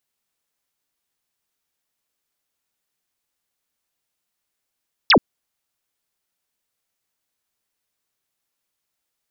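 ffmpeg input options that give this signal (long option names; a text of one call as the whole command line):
ffmpeg -f lavfi -i "aevalsrc='0.355*clip(t/0.002,0,1)*clip((0.08-t)/0.002,0,1)*sin(2*PI*5800*0.08/log(170/5800)*(exp(log(170/5800)*t/0.08)-1))':duration=0.08:sample_rate=44100" out.wav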